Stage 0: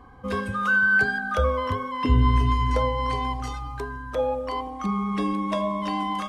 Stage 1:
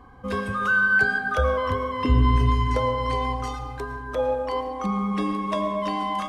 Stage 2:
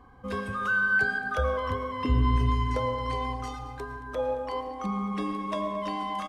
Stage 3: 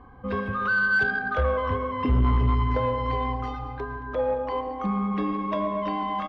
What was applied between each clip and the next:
digital reverb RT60 1.7 s, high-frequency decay 0.4×, pre-delay 70 ms, DRR 8 dB
echo 0.223 s -18 dB; gain -5 dB
air absorption 310 m; soft clip -20.5 dBFS, distortion -16 dB; gain +5.5 dB

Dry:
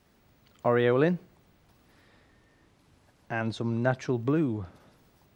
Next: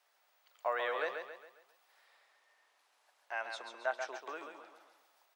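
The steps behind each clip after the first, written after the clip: HPF 650 Hz 24 dB/oct; on a send: feedback echo 0.136 s, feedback 43%, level -6.5 dB; on the sum: gain -5 dB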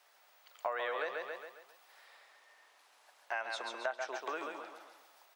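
compressor 4:1, threshold -42 dBFS, peak gain reduction 11.5 dB; gain +7.5 dB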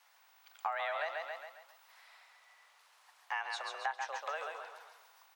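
frequency shift +150 Hz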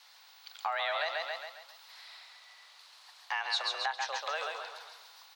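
bell 4200 Hz +13.5 dB 0.87 oct; in parallel at +1 dB: limiter -28 dBFS, peak gain reduction 8.5 dB; on the sum: gain -3 dB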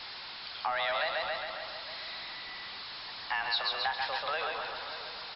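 zero-crossing step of -37 dBFS; outdoor echo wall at 100 m, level -12 dB; MP3 32 kbps 12000 Hz

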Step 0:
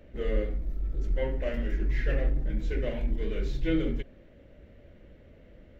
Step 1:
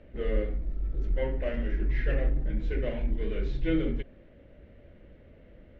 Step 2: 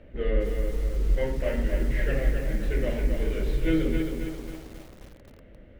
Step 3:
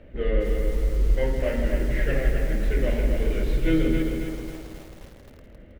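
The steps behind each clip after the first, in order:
LPF 3600 Hz 12 dB/oct
de-hum 71.08 Hz, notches 18; lo-fi delay 0.267 s, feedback 55%, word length 8-bit, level -5 dB; gain +3 dB
feedback echo 0.162 s, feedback 30%, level -8.5 dB; gain +2 dB

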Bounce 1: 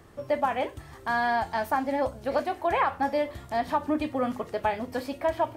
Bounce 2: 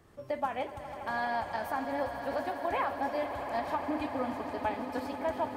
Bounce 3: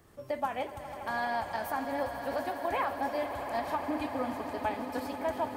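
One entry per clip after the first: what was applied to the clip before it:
tremolo saw up 6.4 Hz, depth 35%; swelling echo 82 ms, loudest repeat 8, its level -15 dB; gain -5.5 dB
high shelf 7800 Hz +9 dB

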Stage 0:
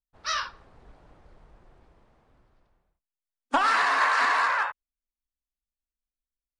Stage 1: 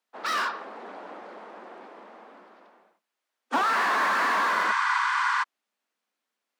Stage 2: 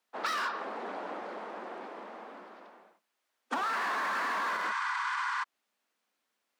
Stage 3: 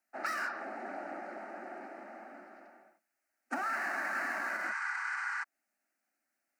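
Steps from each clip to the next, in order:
overdrive pedal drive 32 dB, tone 1400 Hz, clips at -13 dBFS; spectral repair 4.58–5.41, 770–9500 Hz before; steep high-pass 190 Hz 96 dB/oct; gain -3.5 dB
limiter -21.5 dBFS, peak gain reduction 9 dB; compressor, threshold -32 dBFS, peak gain reduction 7 dB; gain +2.5 dB
fixed phaser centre 690 Hz, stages 8

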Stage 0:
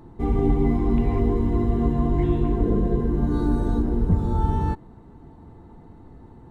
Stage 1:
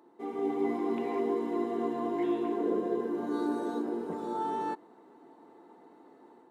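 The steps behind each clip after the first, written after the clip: HPF 310 Hz 24 dB/oct; AGC gain up to 6 dB; gain -8.5 dB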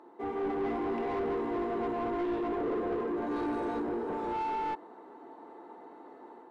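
overdrive pedal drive 23 dB, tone 1200 Hz, clips at -19 dBFS; gain -5.5 dB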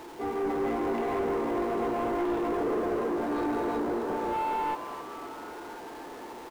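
zero-crossing step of -44 dBFS; frequency-shifting echo 0.259 s, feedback 63%, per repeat +140 Hz, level -12.5 dB; gain +2 dB

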